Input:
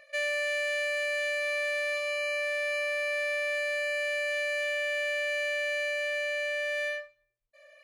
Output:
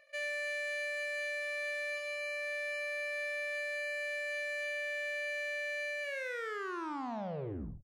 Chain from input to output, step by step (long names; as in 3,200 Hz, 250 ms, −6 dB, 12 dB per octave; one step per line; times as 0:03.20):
turntable brake at the end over 1.81 s
single-tap delay 71 ms −9.5 dB
level −8 dB